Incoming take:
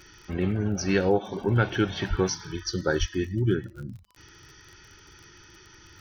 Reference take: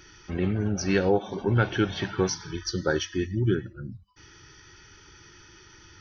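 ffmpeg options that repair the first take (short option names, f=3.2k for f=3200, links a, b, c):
-filter_complex "[0:a]adeclick=t=4,asplit=3[a][b][c];[a]afade=t=out:st=2.09:d=0.02[d];[b]highpass=f=140:w=0.5412,highpass=f=140:w=1.3066,afade=t=in:st=2.09:d=0.02,afade=t=out:st=2.21:d=0.02[e];[c]afade=t=in:st=2.21:d=0.02[f];[d][e][f]amix=inputs=3:normalize=0,asplit=3[g][h][i];[g]afade=t=out:st=2.99:d=0.02[j];[h]highpass=f=140:w=0.5412,highpass=f=140:w=1.3066,afade=t=in:st=2.99:d=0.02,afade=t=out:st=3.11:d=0.02[k];[i]afade=t=in:st=3.11:d=0.02[l];[j][k][l]amix=inputs=3:normalize=0"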